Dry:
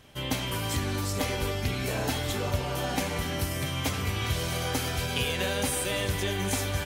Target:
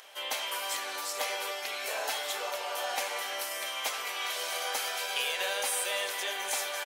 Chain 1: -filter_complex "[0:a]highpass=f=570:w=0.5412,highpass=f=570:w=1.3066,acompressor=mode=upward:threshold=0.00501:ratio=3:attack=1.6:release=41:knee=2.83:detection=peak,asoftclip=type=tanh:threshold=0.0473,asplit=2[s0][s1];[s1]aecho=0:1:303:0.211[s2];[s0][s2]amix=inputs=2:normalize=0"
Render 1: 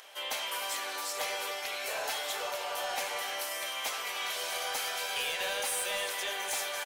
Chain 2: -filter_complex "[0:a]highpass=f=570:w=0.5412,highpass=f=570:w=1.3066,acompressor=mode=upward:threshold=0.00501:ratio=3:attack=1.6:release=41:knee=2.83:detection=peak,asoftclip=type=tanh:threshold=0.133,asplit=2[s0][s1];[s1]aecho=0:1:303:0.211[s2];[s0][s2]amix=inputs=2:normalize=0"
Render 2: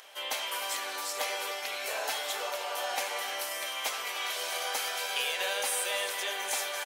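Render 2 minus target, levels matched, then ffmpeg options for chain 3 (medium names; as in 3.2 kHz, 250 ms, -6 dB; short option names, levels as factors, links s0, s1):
echo-to-direct +12 dB
-filter_complex "[0:a]highpass=f=570:w=0.5412,highpass=f=570:w=1.3066,acompressor=mode=upward:threshold=0.00501:ratio=3:attack=1.6:release=41:knee=2.83:detection=peak,asoftclip=type=tanh:threshold=0.133,asplit=2[s0][s1];[s1]aecho=0:1:303:0.0531[s2];[s0][s2]amix=inputs=2:normalize=0"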